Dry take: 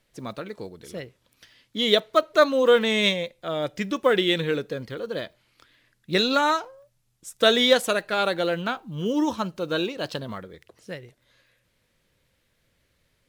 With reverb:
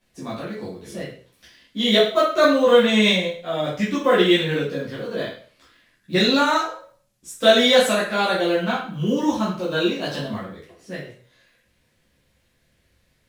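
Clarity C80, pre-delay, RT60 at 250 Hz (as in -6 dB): 8.5 dB, 5 ms, 0.45 s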